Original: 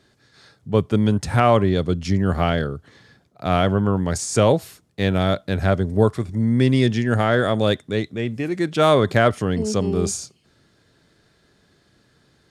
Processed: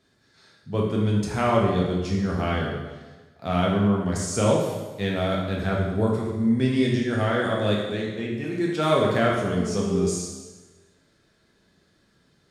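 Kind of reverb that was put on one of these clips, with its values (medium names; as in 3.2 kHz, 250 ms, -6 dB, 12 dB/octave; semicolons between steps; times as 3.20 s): plate-style reverb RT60 1.2 s, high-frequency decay 0.95×, DRR -3 dB; trim -8.5 dB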